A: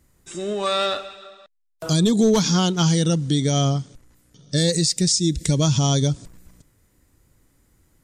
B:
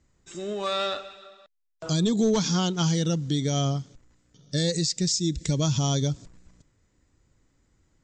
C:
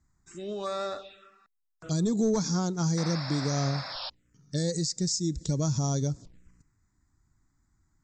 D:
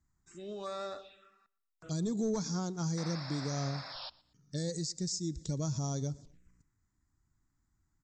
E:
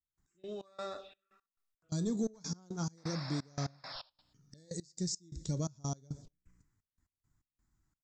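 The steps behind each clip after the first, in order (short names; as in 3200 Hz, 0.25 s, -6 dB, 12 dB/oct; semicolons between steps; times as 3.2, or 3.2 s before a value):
steep low-pass 7900 Hz 96 dB/oct; gain -5.5 dB
painted sound noise, 2.97–4.1, 520–5500 Hz -31 dBFS; envelope phaser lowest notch 490 Hz, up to 3000 Hz, full sweep at -25 dBFS; gain -3 dB
feedback echo 0.118 s, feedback 32%, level -23 dB; gain -7 dB
flange 0.26 Hz, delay 5.4 ms, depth 8.5 ms, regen -70%; step gate "..x..xx..xxxx" 172 bpm -24 dB; gain +4 dB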